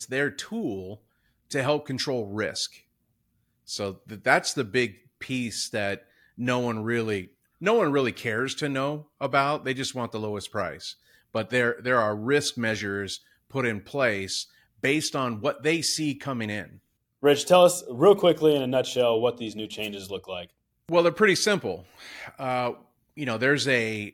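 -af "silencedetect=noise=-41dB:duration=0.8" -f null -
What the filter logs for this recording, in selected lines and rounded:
silence_start: 2.77
silence_end: 3.68 | silence_duration: 0.91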